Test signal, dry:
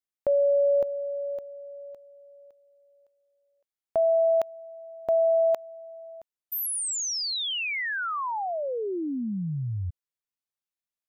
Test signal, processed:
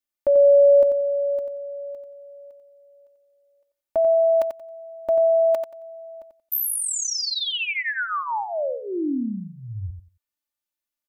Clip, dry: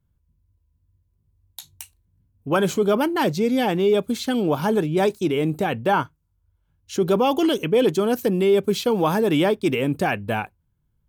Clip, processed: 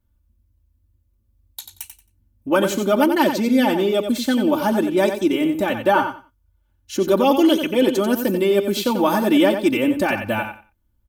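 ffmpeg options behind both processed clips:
-af "equalizer=f=14k:w=2.3:g=5.5,aecho=1:1:3.4:0.9,aecho=1:1:90|180|270:0.398|0.0796|0.0159"

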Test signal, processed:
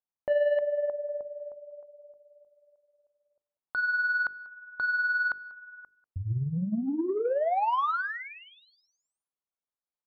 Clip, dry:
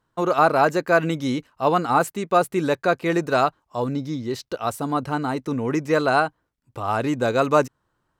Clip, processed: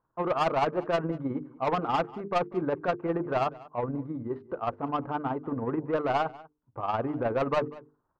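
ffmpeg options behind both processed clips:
-filter_complex "[0:a]lowpass=f=1.2k:w=0.5412,lowpass=f=1.2k:w=1.3066,tiltshelf=f=820:g=-4,bandreject=f=50:t=h:w=6,bandreject=f=100:t=h:w=6,bandreject=f=150:t=h:w=6,bandreject=f=200:t=h:w=6,bandreject=f=250:t=h:w=6,bandreject=f=300:t=h:w=6,bandreject=f=350:t=h:w=6,bandreject=f=400:t=h:w=6,bandreject=f=450:t=h:w=6,asoftclip=type=tanh:threshold=-19dB,tremolo=f=19:d=0.5,asplit=2[a][b];[b]adelay=192.4,volume=-20dB,highshelf=f=4k:g=-4.33[c];[a][c]amix=inputs=2:normalize=0"

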